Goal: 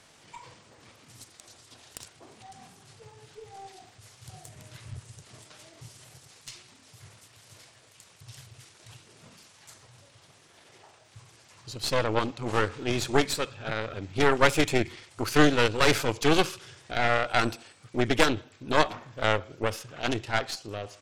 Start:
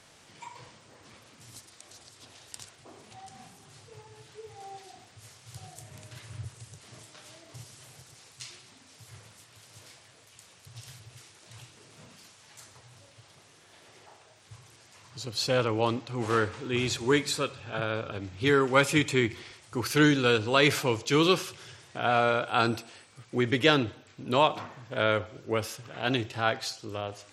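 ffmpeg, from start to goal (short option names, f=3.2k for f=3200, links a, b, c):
-af "aeval=exprs='0.562*(cos(1*acos(clip(val(0)/0.562,-1,1)))-cos(1*PI/2))+0.158*(cos(4*acos(clip(val(0)/0.562,-1,1)))-cos(4*PI/2))+0.0501*(cos(8*acos(clip(val(0)/0.562,-1,1)))-cos(8*PI/2))':c=same,atempo=1.3"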